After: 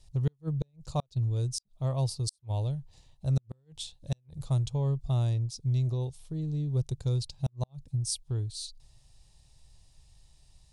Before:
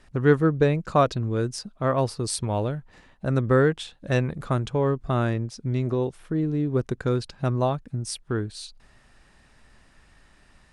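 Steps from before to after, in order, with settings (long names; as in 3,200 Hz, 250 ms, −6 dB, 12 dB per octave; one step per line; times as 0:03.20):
drawn EQ curve 140 Hz 0 dB, 210 Hz −18 dB, 870 Hz −11 dB, 1,500 Hz −27 dB, 3,900 Hz −1 dB, 6,700 Hz +1 dB
gate with flip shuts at −19 dBFS, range −42 dB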